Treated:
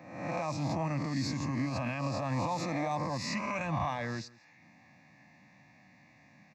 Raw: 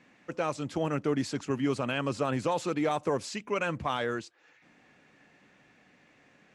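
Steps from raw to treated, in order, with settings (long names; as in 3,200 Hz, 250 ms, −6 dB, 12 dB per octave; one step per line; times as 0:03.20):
peak hold with a rise ahead of every peak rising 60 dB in 0.88 s
high-pass filter 78 Hz 24 dB per octave
low-shelf EQ 320 Hz +6.5 dB
brickwall limiter −19.5 dBFS, peak gain reduction 7 dB
phaser with its sweep stopped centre 2,100 Hz, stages 8
on a send: single-tap delay 169 ms −22 dB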